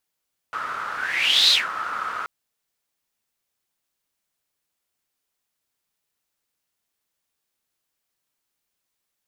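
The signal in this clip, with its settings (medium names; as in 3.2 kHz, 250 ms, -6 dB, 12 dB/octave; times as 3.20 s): whoosh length 1.73 s, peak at 0.98 s, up 0.63 s, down 0.17 s, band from 1.3 kHz, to 4 kHz, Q 8.6, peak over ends 13 dB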